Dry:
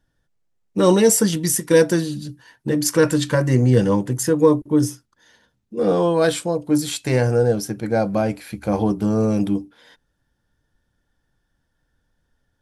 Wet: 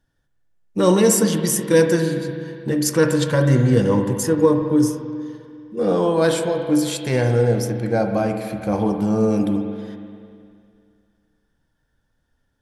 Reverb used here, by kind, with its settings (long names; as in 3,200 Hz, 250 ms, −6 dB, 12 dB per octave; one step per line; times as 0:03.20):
spring reverb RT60 2.3 s, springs 43/50 ms, chirp 45 ms, DRR 5 dB
level −1 dB